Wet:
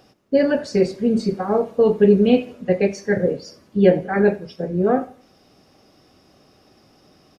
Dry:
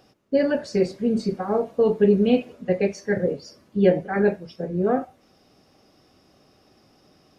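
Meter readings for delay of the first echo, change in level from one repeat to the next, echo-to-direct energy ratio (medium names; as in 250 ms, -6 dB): 85 ms, -9.5 dB, -20.5 dB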